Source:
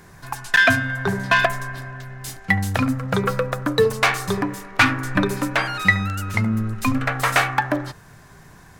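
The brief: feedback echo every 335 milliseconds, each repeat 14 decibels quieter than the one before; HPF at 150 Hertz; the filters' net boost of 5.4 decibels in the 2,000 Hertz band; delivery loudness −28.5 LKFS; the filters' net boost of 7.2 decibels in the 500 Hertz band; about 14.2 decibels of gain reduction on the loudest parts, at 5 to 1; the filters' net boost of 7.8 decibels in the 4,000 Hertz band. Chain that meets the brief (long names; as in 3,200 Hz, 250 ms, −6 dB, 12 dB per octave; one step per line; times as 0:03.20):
high-pass filter 150 Hz
parametric band 500 Hz +8.5 dB
parametric band 2,000 Hz +4.5 dB
parametric band 4,000 Hz +8 dB
downward compressor 5 to 1, threshold −21 dBFS
repeating echo 335 ms, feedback 20%, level −14 dB
level −3.5 dB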